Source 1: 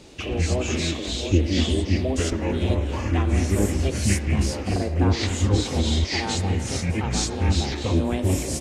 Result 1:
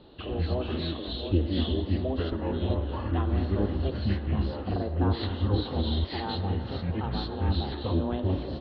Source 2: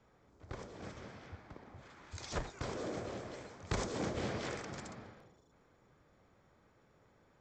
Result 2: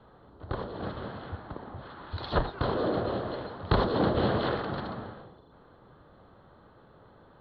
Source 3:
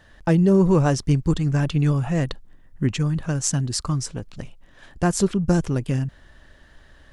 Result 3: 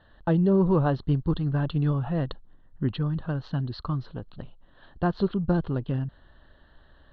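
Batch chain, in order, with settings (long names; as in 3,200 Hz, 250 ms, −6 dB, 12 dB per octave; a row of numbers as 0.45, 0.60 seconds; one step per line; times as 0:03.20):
Chebyshev low-pass with heavy ripple 4,300 Hz, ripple 3 dB
parametric band 2,300 Hz −15 dB 0.47 octaves
normalise the peak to −12 dBFS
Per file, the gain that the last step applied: −2.5, +14.5, −2.0 decibels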